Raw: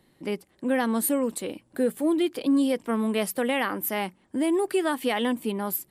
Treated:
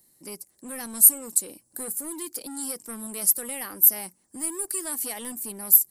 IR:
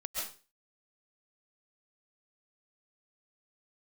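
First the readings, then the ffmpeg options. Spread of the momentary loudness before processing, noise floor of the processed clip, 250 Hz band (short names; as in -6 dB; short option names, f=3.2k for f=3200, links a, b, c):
9 LU, -67 dBFS, -14.5 dB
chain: -filter_complex "[0:a]acrossover=split=1500[a][b];[a]asoftclip=type=hard:threshold=-26.5dB[c];[b]aexciter=amount=14.1:drive=3.6:freq=4.9k[d];[c][d]amix=inputs=2:normalize=0,volume=-10dB"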